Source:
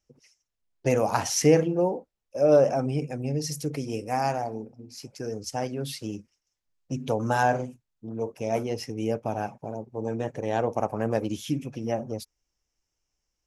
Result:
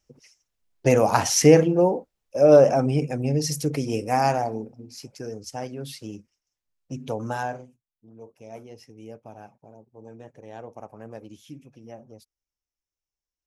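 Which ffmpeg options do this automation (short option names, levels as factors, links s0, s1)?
-af "volume=1.78,afade=t=out:st=4.34:d=1.07:silence=0.398107,afade=t=out:st=7.23:d=0.43:silence=0.281838"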